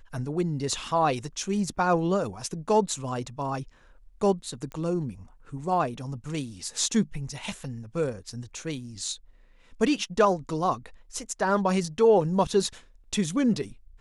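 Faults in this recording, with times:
4.72 s: pop -25 dBFS

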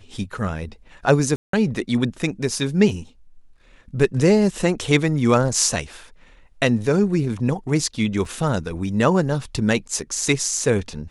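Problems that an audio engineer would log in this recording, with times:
1.36–1.53 s: dropout 173 ms
8.25 s: dropout 3.9 ms

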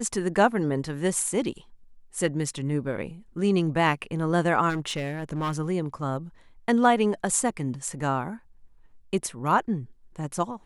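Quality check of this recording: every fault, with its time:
4.69–5.53 s: clipped -24 dBFS

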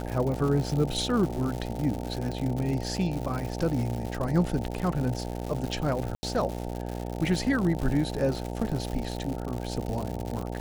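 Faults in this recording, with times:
buzz 60 Hz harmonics 15 -34 dBFS
crackle 180 per s -31 dBFS
6.15–6.23 s: dropout 80 ms

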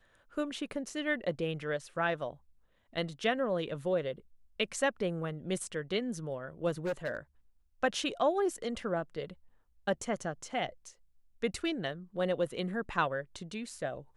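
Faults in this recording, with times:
6.85–7.17 s: clipped -29.5 dBFS

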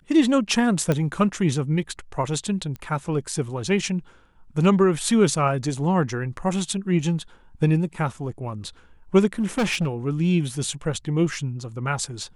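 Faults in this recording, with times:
0.92 s: pop -10 dBFS
2.76 s: pop -22 dBFS
9.40–9.88 s: clipped -18.5 dBFS

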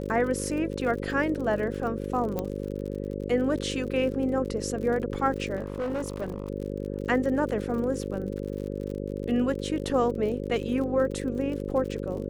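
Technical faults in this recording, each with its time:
buzz 50 Hz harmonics 11 -33 dBFS
crackle 58 per s -35 dBFS
2.39 s: pop -16 dBFS
5.56–6.50 s: clipped -26.5 dBFS

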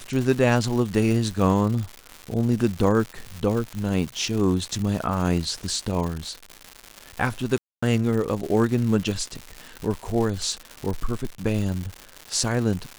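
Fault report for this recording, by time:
crackle 250 per s -28 dBFS
7.58–7.83 s: dropout 245 ms

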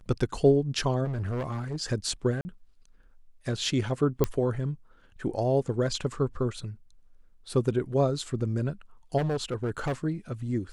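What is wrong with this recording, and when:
1.04–1.76 s: clipped -27.5 dBFS
2.41–2.45 s: dropout 40 ms
4.24 s: pop -11 dBFS
9.17–9.93 s: clipped -24.5 dBFS

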